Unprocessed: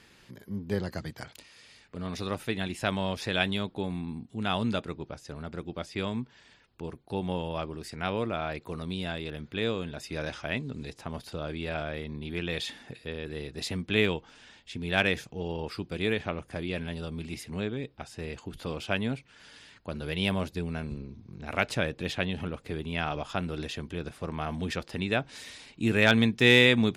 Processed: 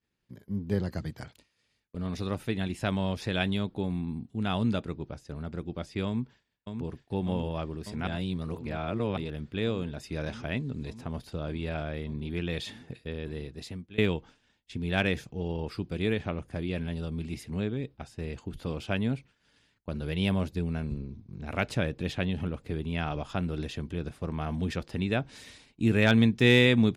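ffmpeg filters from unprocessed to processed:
-filter_complex "[0:a]asplit=2[a][b];[b]afade=t=in:st=6.06:d=0.01,afade=t=out:st=6.89:d=0.01,aecho=0:1:600|1200|1800|2400|3000|3600|4200|4800|5400|6000|6600|7200:0.473151|0.402179|0.341852|0.290574|0.246988|0.20994|0.178449|0.151681|0.128929|0.10959|0.0931514|0.0791787[c];[a][c]amix=inputs=2:normalize=0,asplit=4[d][e][f][g];[d]atrim=end=8.072[h];[e]atrim=start=8.068:end=9.172,asetpts=PTS-STARTPTS,areverse[i];[f]atrim=start=9.168:end=13.98,asetpts=PTS-STARTPTS,afade=t=out:st=4.102:d=0.71:silence=0.0891251[j];[g]atrim=start=13.98,asetpts=PTS-STARTPTS,afade=t=in:d=0.004:c=hsin:silence=0.0891251[k];[h][i]acrossfade=d=0.004:c1=hsin:c2=hsin[l];[j][k]concat=n=2:v=0:a=1[m];[l][m]acrossfade=d=0.004:c1=hsin:c2=hsin,agate=range=-33dB:threshold=-43dB:ratio=3:detection=peak,lowshelf=f=360:g=8.5,volume=-4dB"

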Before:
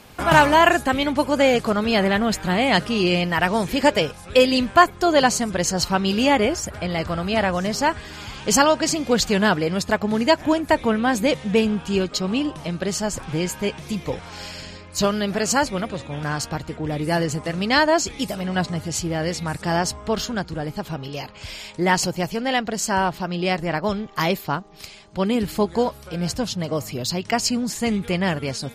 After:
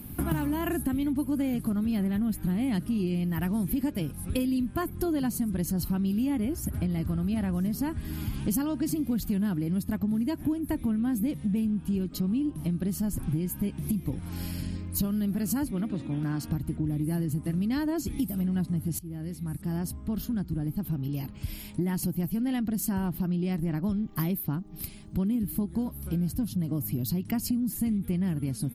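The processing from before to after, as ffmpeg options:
-filter_complex "[0:a]asettb=1/sr,asplit=3[a][b][c];[a]atrim=end=15.714[d];[b]atrim=start=15.71:end=16.48,asetpts=PTS-STARTPTS,afade=t=in:d=0.004:c=qsin,afade=t=out:st=0.766:d=0.004:c=qsin,acrossover=split=180 6700:gain=0.224 1 0.251[e][f][g];[e][f][g]amix=inputs=3:normalize=0[h];[c]atrim=start=16.476[i];[d][h]acrossfade=d=0.004:c1=hsin:c2=qsin[j];[j][i]acrossfade=d=0.004:c1=qsin:c2=hsin,asplit=2[k][l];[k]atrim=end=18.99,asetpts=PTS-STARTPTS,afade=t=out:st=18.986:d=0.004:c=hsin:silence=0.0944061[m];[l]atrim=start=18.99,asetpts=PTS-STARTPTS,afade=t=in:d=3.29:silence=0.0944061[n];[m][n]concat=n=2:v=0:a=1,firequalizer=gain_entry='entry(300,0);entry(450,-19);entry(7100,-19);entry(11000,5)':delay=0.05:min_phase=1,acompressor=threshold=-35dB:ratio=6,volume=8.5dB"

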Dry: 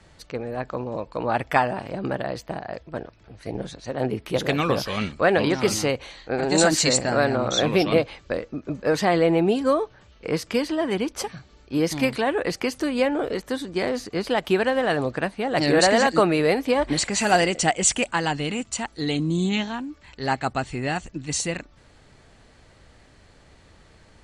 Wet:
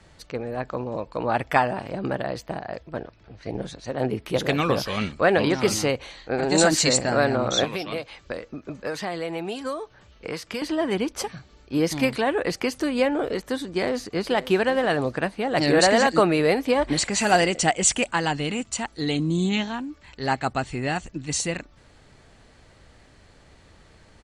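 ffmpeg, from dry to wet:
-filter_complex "[0:a]asettb=1/sr,asplit=3[a][b][c];[a]atrim=end=2.964[d];[b]atrim=start=2.96:end=3.5,asetpts=PTS-STARTPTS,afade=t=in:d=0.004:c=qsin,afade=t=out:st=0.536:d=0.004:c=qsin,lowpass=f=6.2k:w=0.5412,lowpass=f=6.2k:w=1.3066[e];[c]atrim=start=3.496[f];[d][e]acrossfade=d=0.004:c1=hsin:c2=qsin[g];[g][f]acrossfade=d=0.004:c1=qsin:c2=hsin,asettb=1/sr,asplit=3[h][i][j];[h]atrim=end=7.644[k];[i]atrim=start=7.64:end=10.62,asetpts=PTS-STARTPTS,afade=t=in:d=0.004:c=qsin,afade=t=out:st=2.976:d=0.004:c=qsin,acrossover=split=720|4400[l][m][n];[l]acompressor=threshold=-33dB:ratio=4[o];[m]acompressor=threshold=-33dB:ratio=4[p];[n]acompressor=threshold=-42dB:ratio=4[q];[o][p][q]amix=inputs=3:normalize=0[r];[j]atrim=start=10.616[s];[k][r]acrossfade=d=0.004:c1=hsin:c2=qsin[t];[t][s]acrossfade=d=0.004:c1=qsin:c2=hsin,asplit=2[u][v];[v]afade=t=in:st=13.7:d=0.01,afade=t=out:st=14.31:d=0.01,aecho=0:1:540|1080|1620|2160:0.16788|0.0671522|0.0268609|0.0107443[w];[u][w]amix=inputs=2:normalize=0"

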